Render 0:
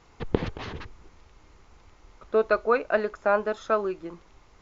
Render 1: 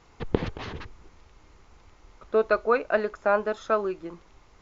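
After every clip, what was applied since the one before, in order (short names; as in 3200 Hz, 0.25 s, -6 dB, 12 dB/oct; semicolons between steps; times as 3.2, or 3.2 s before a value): nothing audible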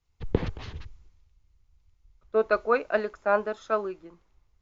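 three-band expander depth 70%; gain -3 dB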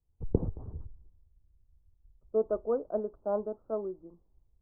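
Gaussian blur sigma 12 samples; gain -1.5 dB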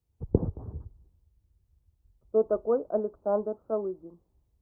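HPF 57 Hz; gain +4 dB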